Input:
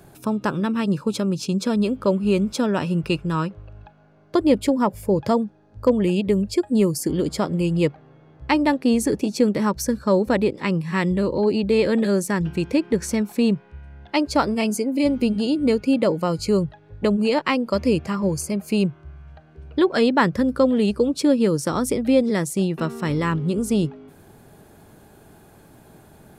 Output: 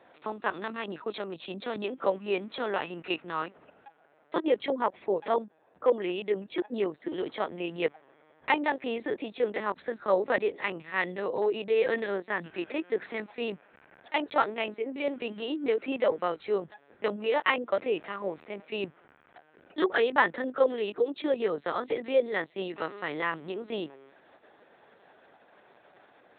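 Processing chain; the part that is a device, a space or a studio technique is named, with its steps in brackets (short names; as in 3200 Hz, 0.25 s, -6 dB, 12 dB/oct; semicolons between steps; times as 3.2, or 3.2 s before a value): talking toy (LPC vocoder at 8 kHz pitch kept; HPF 480 Hz 12 dB/oct; bell 1900 Hz +5.5 dB 0.31 oct); gain -2.5 dB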